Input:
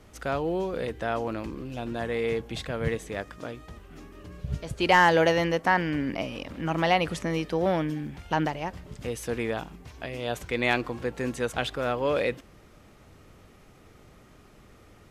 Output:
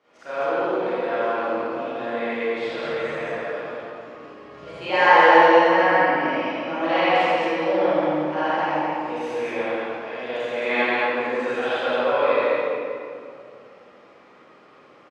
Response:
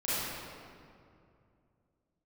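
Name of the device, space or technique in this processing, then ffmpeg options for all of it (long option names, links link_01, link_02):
station announcement: -filter_complex "[0:a]highpass=430,lowpass=3600,equalizer=frequency=1100:width_type=o:width=0.21:gain=4.5,aecho=1:1:81.63|134.1|218.7:0.891|0.355|0.891[link_01];[1:a]atrim=start_sample=2205[link_02];[link_01][link_02]afir=irnorm=-1:irlink=0,volume=-5.5dB"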